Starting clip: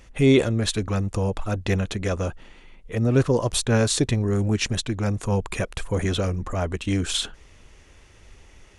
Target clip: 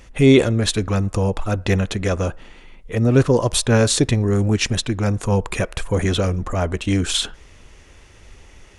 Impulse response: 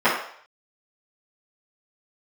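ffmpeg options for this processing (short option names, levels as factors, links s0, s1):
-filter_complex "[0:a]asplit=2[s0][s1];[1:a]atrim=start_sample=2205[s2];[s1][s2]afir=irnorm=-1:irlink=0,volume=0.00794[s3];[s0][s3]amix=inputs=2:normalize=0,volume=1.68"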